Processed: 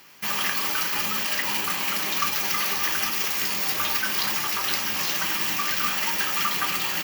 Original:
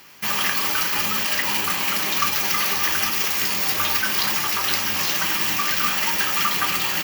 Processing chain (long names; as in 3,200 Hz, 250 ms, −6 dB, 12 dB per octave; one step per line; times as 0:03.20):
parametric band 76 Hz −7 dB 0.73 octaves
level −3.5 dB